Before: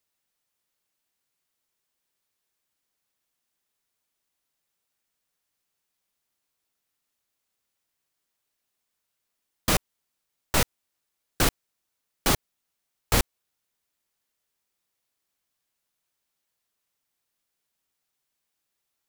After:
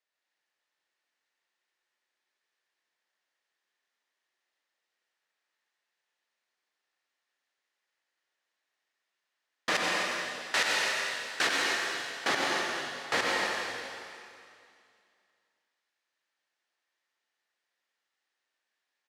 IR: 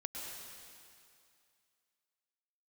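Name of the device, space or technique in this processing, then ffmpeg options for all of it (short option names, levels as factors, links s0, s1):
station announcement: -filter_complex "[0:a]asettb=1/sr,asplit=3[s0][s1][s2];[s0]atrim=end=9.754[s3];[s1]atrim=start=9.75:end=11.47,asetpts=PTS-STARTPTS,afade=t=in:d=0.004:c=qsin,afade=t=out:st=1.716:d=0.004:c=qsin,tiltshelf=f=1400:g=-5[s4];[s2]atrim=start=11.466[s5];[s3][s4]acrossfade=d=0.004:c1=hsin:c2=qsin[s6];[s6][s5]acrossfade=d=0.004:c1=qsin:c2=hsin,highpass=390,lowpass=4700,equalizer=f=1800:t=o:w=0.32:g=8.5,aecho=1:1:90.38|169.1|259.5:0.447|0.316|0.316[s7];[1:a]atrim=start_sample=2205[s8];[s7][s8]afir=irnorm=-1:irlink=0"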